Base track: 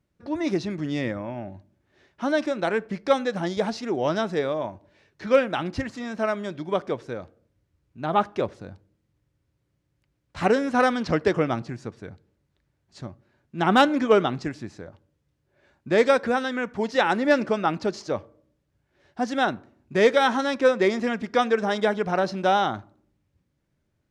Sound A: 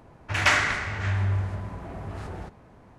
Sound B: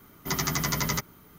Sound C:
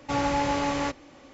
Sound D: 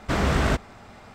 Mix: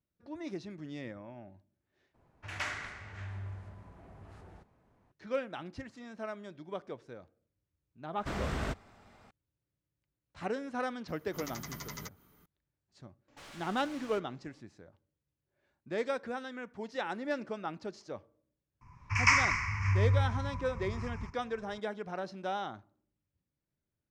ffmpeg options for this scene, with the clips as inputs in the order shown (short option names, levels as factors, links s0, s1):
-filter_complex "[1:a]asplit=2[s0][s1];[0:a]volume=0.178[s2];[2:a]acompressor=mode=upward:threshold=0.01:ratio=2.5:attack=3.2:release=140:knee=2.83:detection=peak[s3];[3:a]aeval=exprs='0.0316*(abs(mod(val(0)/0.0316+3,4)-2)-1)':c=same[s4];[s1]firequalizer=gain_entry='entry(120,0);entry(340,-20);entry(660,-29);entry(1000,5);entry(1500,-11);entry(2300,4);entry(3600,-27);entry(5200,5);entry(9100,-14);entry(13000,-20)':delay=0.05:min_phase=1[s5];[s2]asplit=2[s6][s7];[s6]atrim=end=2.144[s8];[s0]atrim=end=2.98,asetpts=PTS-STARTPTS,volume=0.15[s9];[s7]atrim=start=5.116[s10];[4:a]atrim=end=1.14,asetpts=PTS-STARTPTS,volume=0.224,afade=t=in:d=0.004:c=hsin,afade=t=out:st=1.136:d=0.004:c=hsin,adelay=8170[s11];[s3]atrim=end=1.38,asetpts=PTS-STARTPTS,volume=0.158,afade=t=in:d=0.004:c=hsin,afade=t=out:st=1.376:d=0.004:c=hsin,adelay=11080[s12];[s4]atrim=end=1.33,asetpts=PTS-STARTPTS,volume=0.15,afade=t=in:d=0.004:c=hsin,afade=t=out:st=1.326:d=0.004:c=hsin,adelay=13280[s13];[s5]atrim=end=2.98,asetpts=PTS-STARTPTS,volume=0.794,afade=t=in:d=0.004:c=hsin,afade=t=out:st=2.976:d=0.004:c=hsin,adelay=18810[s14];[s8][s9]acrossfade=d=0.004:c1=hsin:c2=hsin[s15];[s15][s10]acrossfade=d=0.004:c1=hsin:c2=hsin[s16];[s16][s11][s12][s13][s14]amix=inputs=5:normalize=0"